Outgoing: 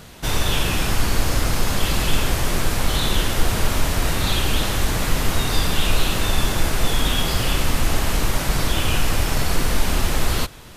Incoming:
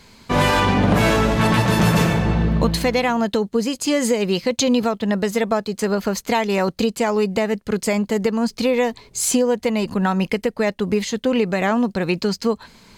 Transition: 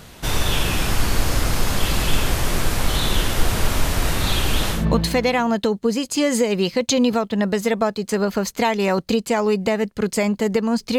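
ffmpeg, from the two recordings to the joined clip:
-filter_complex "[0:a]apad=whole_dur=10.98,atrim=end=10.98,atrim=end=4.86,asetpts=PTS-STARTPTS[a];[1:a]atrim=start=2.4:end=8.68,asetpts=PTS-STARTPTS[b];[a][b]acrossfade=d=0.16:c1=tri:c2=tri"

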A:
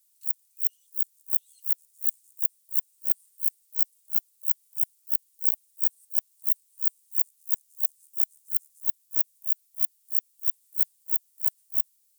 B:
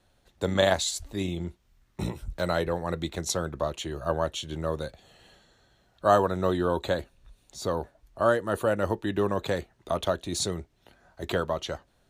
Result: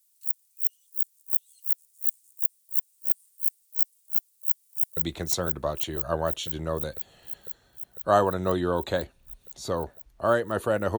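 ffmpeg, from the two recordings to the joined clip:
-filter_complex "[0:a]apad=whole_dur=10.98,atrim=end=10.98,atrim=end=4.972[a];[1:a]atrim=start=2.938:end=8.95[b];[a][b]acrossfade=d=0.004:c1=hsin:c2=hsin,asplit=2[c][d];[d]afade=t=in:st=4.19:d=0.01,afade=t=out:st=4.97:d=0.01,aecho=0:1:500|1000|1500|2000|2500|3000|3500|4000|4500|5000|5500|6000:0.668344|0.534675|0.42774|0.342192|0.273754|0.219003|0.175202|0.140162|0.11213|0.0897036|0.0717629|0.0574103[e];[c][e]amix=inputs=2:normalize=0"

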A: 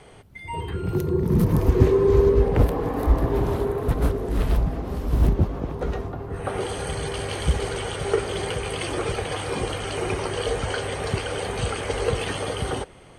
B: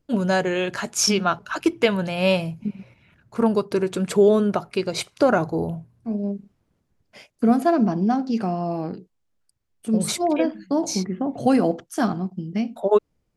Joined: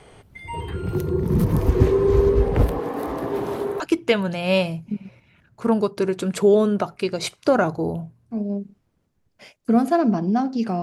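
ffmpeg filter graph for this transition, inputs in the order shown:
-filter_complex "[0:a]asettb=1/sr,asplit=3[a][b][c];[a]atrim=end=2.794[d];[b]atrim=start=2.79:end=3.8,asetpts=PTS-STARTPTS,afade=t=in:d=0.004:c=qsin,afade=t=out:st=1.006:d=0.004:c=qsin,highpass=220[e];[c]atrim=start=3.796[f];[d][e]acrossfade=d=0.004:c1=hsin:c2=qsin[g];[g][f]acrossfade=d=0.004:c1=qsin:c2=hsin,apad=whole_dur=10.82,atrim=end=10.82,atrim=end=3.802[h];[1:a]atrim=start=1.538:end=8.56[i];[h][i]acrossfade=d=0.004:c1=hsin:c2=hsin"

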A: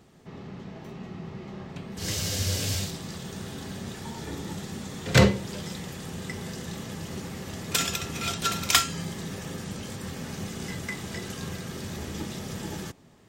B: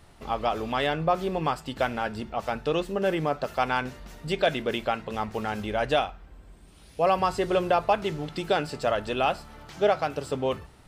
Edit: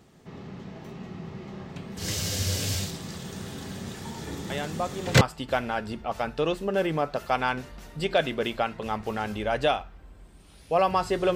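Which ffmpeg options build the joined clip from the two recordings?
-filter_complex "[1:a]asplit=2[a][b];[0:a]apad=whole_dur=11.35,atrim=end=11.35,atrim=end=5.212[c];[b]atrim=start=1.488:end=7.63[d];[a]atrim=start=0.78:end=1.49,asetpts=PTS-STARTPTS,volume=-6.5dB,afade=t=in:d=0.004:c=hsin,afade=t=out:st=0.706:d=0.004:c=hsin,adelay=4500[e];[c][d]acrossfade=d=0.004:c1=hsin:c2=hsin[f];[f][e]amix=inputs=2:normalize=0"

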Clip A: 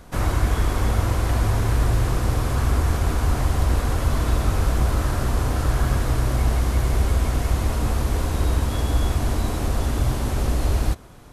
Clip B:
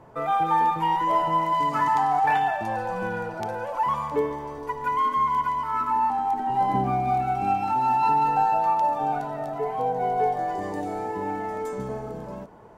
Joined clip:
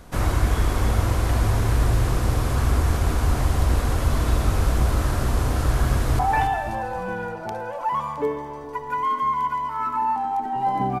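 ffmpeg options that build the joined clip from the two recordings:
-filter_complex "[0:a]apad=whole_dur=11,atrim=end=11,atrim=end=6.192[a];[1:a]atrim=start=2.128:end=6.94[b];[a][b]acrossfade=d=0.004:c1=hsin:c2=hsin,asplit=2[c][d];[d]afade=t=in:st=5.85:d=0.01,afade=t=out:st=6.19:d=0.01,aecho=0:1:280|560|840|1120|1400:0.446684|0.201008|0.0904534|0.040704|0.0183168[e];[c][e]amix=inputs=2:normalize=0"

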